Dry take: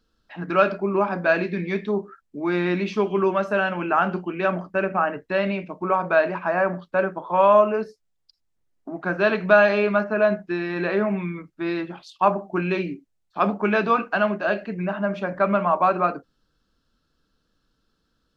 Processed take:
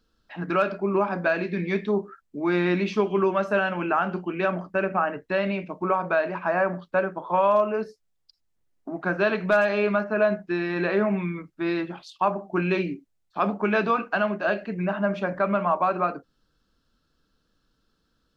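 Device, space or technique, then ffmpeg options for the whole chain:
clipper into limiter: -af "asoftclip=type=hard:threshold=-6.5dB,alimiter=limit=-12dB:level=0:latency=1:release=334"

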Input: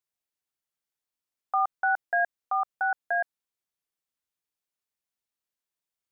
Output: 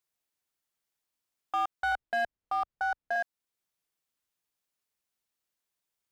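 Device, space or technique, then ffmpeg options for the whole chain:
clipper into limiter: -filter_complex "[0:a]asettb=1/sr,asplit=3[link_01][link_02][link_03];[link_01]atrim=end=1.924[link_04];[link_02]atrim=start=1.92:end=3.16,asetpts=PTS-STARTPTS,afade=type=in:duration=0.004:curve=qsin,afade=type=out:start_time=1.236:duration=0.004:curve=qsin,aemphasis=mode=reproduction:type=riaa[link_05];[link_03]atrim=start=3.156[link_06];[link_04][link_05]acrossfade=duration=0.004:curve1=hsin:curve2=qsin[link_07];[link_07][link_06]acrossfade=duration=0.004:curve1=qsin:curve2=hsin,asoftclip=type=hard:threshold=-21dB,alimiter=level_in=3.5dB:limit=-24dB:level=0:latency=1:release=431,volume=-3.5dB,volume=3.5dB"

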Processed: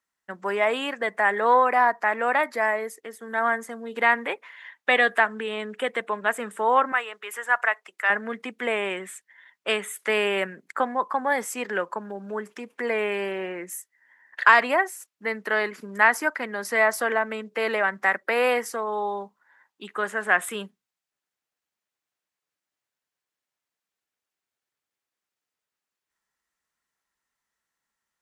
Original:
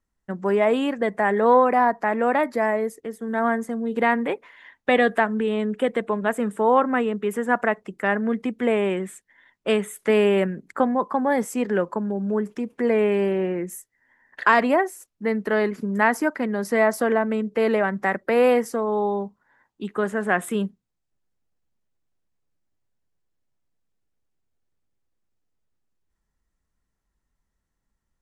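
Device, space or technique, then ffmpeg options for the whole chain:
filter by subtraction: -filter_complex "[0:a]asettb=1/sr,asplit=3[link_01][link_02][link_03];[link_01]atrim=end=6.924[link_04];[link_02]atrim=start=6.92:end=8.1,asetpts=PTS-STARTPTS,afade=type=in:duration=0.004:curve=qsin,afade=type=out:start_time=1.176:duration=0.004:curve=qsin,highpass=740[link_05];[link_03]atrim=start=8.096[link_06];[link_04][link_05]acrossfade=duration=0.004:curve1=hsin:curve2=qsin[link_07];[link_07][link_06]acrossfade=duration=0.004:curve1=qsin:curve2=hsin,asplit=2[link_08][link_09];[link_09]lowpass=1700,volume=-1[link_10];[link_08][link_10]amix=inputs=2:normalize=0,volume=2dB"

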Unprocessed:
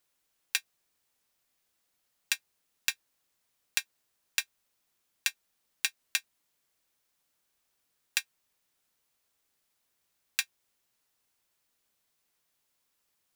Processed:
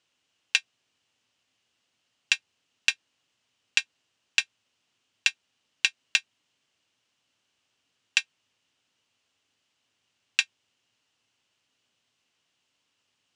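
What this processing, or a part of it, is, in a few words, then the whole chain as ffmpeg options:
car door speaker: -af "highpass=81,equalizer=frequency=110:width_type=q:width=4:gain=8,equalizer=frequency=260:width_type=q:width=4:gain=5,equalizer=frequency=2900:width_type=q:width=4:gain=10,lowpass=frequency=7200:width=0.5412,lowpass=frequency=7200:width=1.3066,volume=3.5dB"

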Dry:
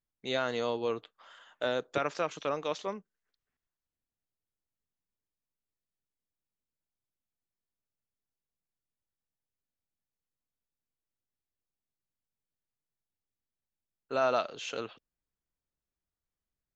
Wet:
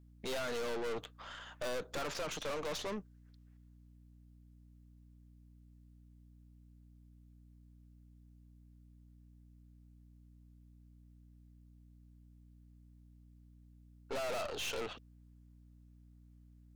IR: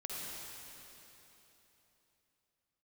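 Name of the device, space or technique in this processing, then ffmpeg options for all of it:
valve amplifier with mains hum: -af "aeval=exprs='(tanh(178*val(0)+0.55)-tanh(0.55))/178':channel_layout=same,aeval=exprs='val(0)+0.000447*(sin(2*PI*60*n/s)+sin(2*PI*2*60*n/s)/2+sin(2*PI*3*60*n/s)/3+sin(2*PI*4*60*n/s)/4+sin(2*PI*5*60*n/s)/5)':channel_layout=same,volume=8.5dB"

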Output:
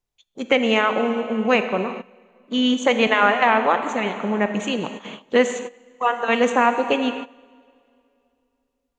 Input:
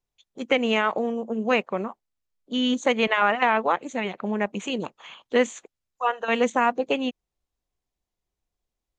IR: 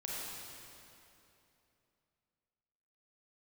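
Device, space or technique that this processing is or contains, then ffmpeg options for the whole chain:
keyed gated reverb: -filter_complex "[0:a]asplit=3[link_01][link_02][link_03];[1:a]atrim=start_sample=2205[link_04];[link_02][link_04]afir=irnorm=-1:irlink=0[link_05];[link_03]apad=whole_len=396132[link_06];[link_05][link_06]sidechaingate=range=-16dB:threshold=-44dB:ratio=16:detection=peak,volume=-6dB[link_07];[link_01][link_07]amix=inputs=2:normalize=0,volume=1.5dB"

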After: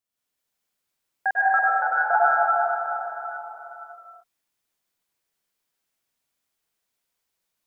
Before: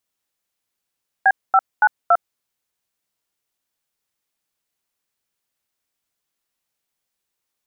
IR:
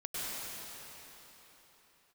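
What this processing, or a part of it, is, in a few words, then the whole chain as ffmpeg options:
cathedral: -filter_complex "[1:a]atrim=start_sample=2205[link_01];[0:a][link_01]afir=irnorm=-1:irlink=0,asettb=1/sr,asplit=3[link_02][link_03][link_04];[link_02]atrim=end=1.694[link_05];[link_03]atrim=start=1.69:end=2.13,asetpts=PTS-STARTPTS,afade=type=in:duration=0.004:curve=qsin,afade=type=out:start_time=0.436:duration=0.004:curve=qsin,equalizer=frequency=125:width_type=o:width=1:gain=-4,equalizer=frequency=250:width_type=o:width=1:gain=-10,equalizer=frequency=500:width_type=o:width=1:gain=10,equalizer=frequency=1000:width_type=o:width=1:gain=-8[link_06];[link_04]atrim=start=2.126[link_07];[link_05][link_06]acrossfade=duration=0.004:curve1=hsin:curve2=qsin[link_08];[link_08][link_07]acrossfade=duration=0.004:curve1=qsin:curve2=hsin,volume=-3.5dB"

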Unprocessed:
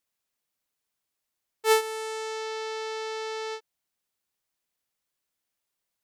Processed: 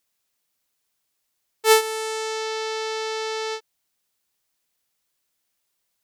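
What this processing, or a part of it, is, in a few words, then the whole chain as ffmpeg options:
presence and air boost: -af "equalizer=frequency=4800:width_type=o:width=1.9:gain=2.5,highshelf=frequency=9100:gain=4,volume=5dB"

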